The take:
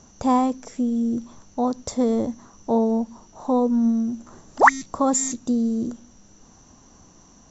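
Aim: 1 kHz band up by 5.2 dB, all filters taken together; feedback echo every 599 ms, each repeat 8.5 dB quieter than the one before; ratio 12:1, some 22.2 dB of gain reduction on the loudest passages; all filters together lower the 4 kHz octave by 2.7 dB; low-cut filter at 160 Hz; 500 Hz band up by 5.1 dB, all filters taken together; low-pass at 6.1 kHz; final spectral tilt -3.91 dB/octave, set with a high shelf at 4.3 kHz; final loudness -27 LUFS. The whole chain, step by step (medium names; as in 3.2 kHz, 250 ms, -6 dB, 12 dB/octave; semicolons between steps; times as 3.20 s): high-pass 160 Hz; low-pass 6.1 kHz; peaking EQ 500 Hz +4.5 dB; peaking EQ 1 kHz +5 dB; peaking EQ 4 kHz -6 dB; treble shelf 4.3 kHz +5 dB; compression 12:1, threshold -27 dBFS; feedback delay 599 ms, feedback 38%, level -8.5 dB; trim +5.5 dB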